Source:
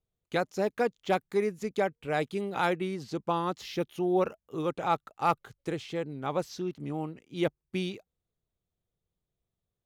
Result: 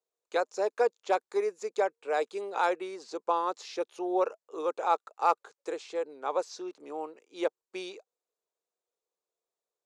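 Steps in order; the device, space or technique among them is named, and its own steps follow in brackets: phone speaker on a table (cabinet simulation 400–8700 Hz, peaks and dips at 470 Hz +4 dB, 980 Hz +4 dB, 2 kHz -6 dB, 3.1 kHz -8 dB, 7.2 kHz +4 dB)

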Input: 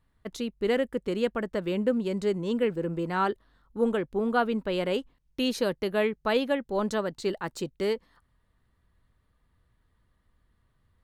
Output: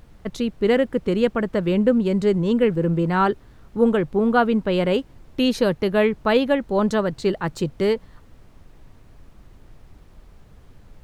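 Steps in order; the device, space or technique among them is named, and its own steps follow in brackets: car interior (peaking EQ 140 Hz +8.5 dB 0.78 oct; treble shelf 4.5 kHz -6 dB; brown noise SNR 23 dB); trim +7 dB

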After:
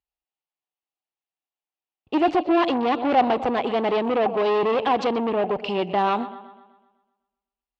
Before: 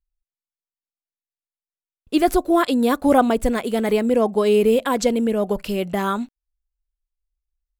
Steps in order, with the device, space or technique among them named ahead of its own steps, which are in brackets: analogue delay pedal into a guitar amplifier (bucket-brigade echo 126 ms, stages 4096, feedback 50%, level -17 dB; valve stage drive 23 dB, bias 0.45; cabinet simulation 100–4500 Hz, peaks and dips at 210 Hz -3 dB, 330 Hz +6 dB, 780 Hz +8 dB, 1.5 kHz -5 dB, 2.8 kHz +7 dB); peaking EQ 930 Hz +6 dB 1.9 oct

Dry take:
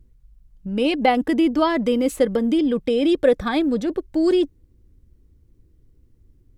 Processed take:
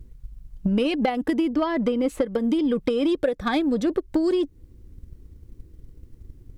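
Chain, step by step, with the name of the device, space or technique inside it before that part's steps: drum-bus smash (transient shaper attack +7 dB, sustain 0 dB; compression 16:1, threshold -25 dBFS, peak gain reduction 19.5 dB; saturation -20 dBFS, distortion -19 dB); 1.53–2.26 s: treble shelf 5.3 kHz -10.5 dB; trim +7.5 dB

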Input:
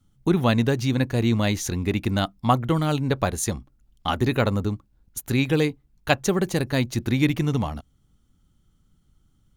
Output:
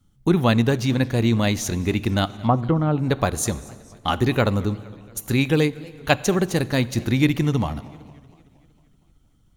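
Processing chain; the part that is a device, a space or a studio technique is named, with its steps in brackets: 2.34–2.99 s: low-pass that closes with the level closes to 890 Hz, closed at -16.5 dBFS; compressed reverb return (on a send at -13.5 dB: reverberation RT60 1.5 s, pre-delay 3 ms + compression, threshold -23 dBFS, peak gain reduction 8 dB); on the sum: modulated delay 231 ms, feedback 59%, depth 219 cents, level -23 dB; trim +2 dB

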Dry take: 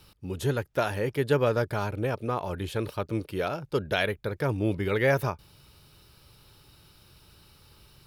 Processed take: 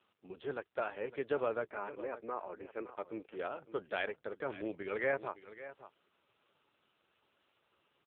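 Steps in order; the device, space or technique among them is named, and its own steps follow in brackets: 1.70–2.96 s: Chebyshev band-pass 190–2400 Hz, order 4; satellite phone (band-pass 360–3200 Hz; delay 559 ms -14.5 dB; trim -7.5 dB; AMR-NB 5.9 kbps 8 kHz)

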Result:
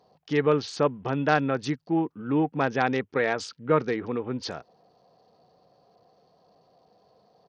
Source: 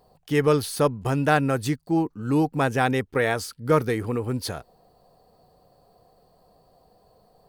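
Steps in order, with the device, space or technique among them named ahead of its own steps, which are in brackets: dynamic bell 110 Hz, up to -8 dB, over -49 dBFS, Q 6.2; Bluetooth headset (high-pass 140 Hz 12 dB/octave; resampled via 16 kHz; trim -2 dB; SBC 64 kbps 48 kHz)

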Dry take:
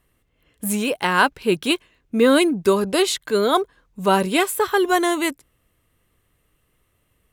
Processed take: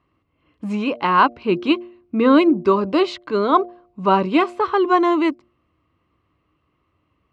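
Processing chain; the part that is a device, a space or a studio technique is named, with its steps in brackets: guitar cabinet (cabinet simulation 77–4100 Hz, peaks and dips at 79 Hz +5 dB, 310 Hz +8 dB, 460 Hz -4 dB, 1.1 kHz +9 dB, 1.7 kHz -8 dB, 3.5 kHz -9 dB); de-hum 118 Hz, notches 6

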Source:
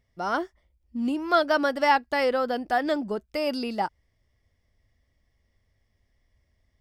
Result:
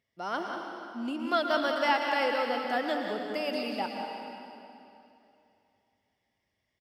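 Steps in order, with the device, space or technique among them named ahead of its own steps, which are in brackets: PA in a hall (high-pass 170 Hz 12 dB/octave; peaking EQ 2.9 kHz +6 dB 0.87 oct; delay 186 ms -8.5 dB; reverberation RT60 2.8 s, pre-delay 103 ms, DRR 2.5 dB); trim -7 dB

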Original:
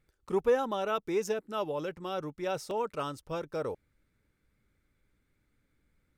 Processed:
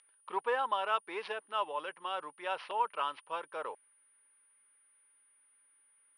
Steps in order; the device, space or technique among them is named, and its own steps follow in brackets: toy sound module (decimation joined by straight lines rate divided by 4×; class-D stage that switches slowly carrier 9.6 kHz; cabinet simulation 780–4900 Hz, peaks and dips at 990 Hz +9 dB, 1.7 kHz +4 dB, 3 kHz +8 dB)

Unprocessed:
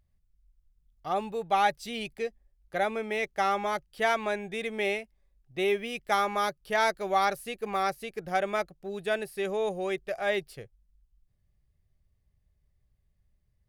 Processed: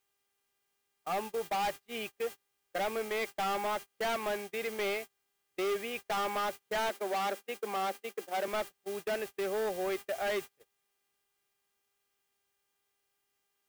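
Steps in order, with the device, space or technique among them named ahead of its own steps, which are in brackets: aircraft radio (band-pass 310–2600 Hz; hard clipper -29.5 dBFS, distortion -6 dB; mains buzz 400 Hz, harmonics 8, -55 dBFS -1 dB/octave; white noise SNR 13 dB; gate -39 dBFS, range -32 dB); 6.89–8.48 s: elliptic high-pass 200 Hz

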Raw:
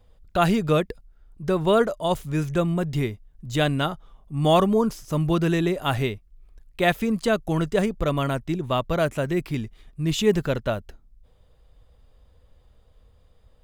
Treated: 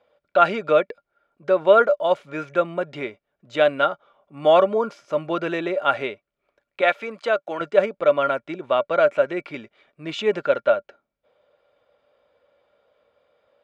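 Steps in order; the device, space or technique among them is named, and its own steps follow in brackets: tin-can telephone (band-pass 420–3100 Hz; small resonant body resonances 580/1400/2300 Hz, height 12 dB, ringing for 50 ms); 6.81–7.61 s: high-pass 460 Hz 6 dB/octave; trim +1.5 dB

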